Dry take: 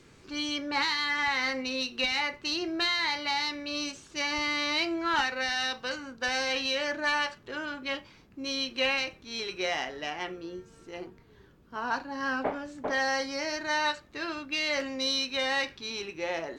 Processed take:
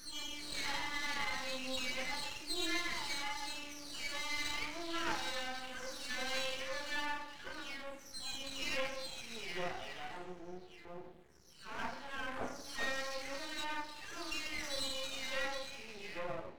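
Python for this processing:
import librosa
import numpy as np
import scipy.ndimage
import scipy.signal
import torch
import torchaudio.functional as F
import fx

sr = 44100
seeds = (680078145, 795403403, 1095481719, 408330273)

y = fx.spec_delay(x, sr, highs='early', ms=615)
y = fx.rev_double_slope(y, sr, seeds[0], early_s=0.78, late_s=3.5, knee_db=-21, drr_db=3.5)
y = np.maximum(y, 0.0)
y = F.gain(torch.from_numpy(y), -5.5).numpy()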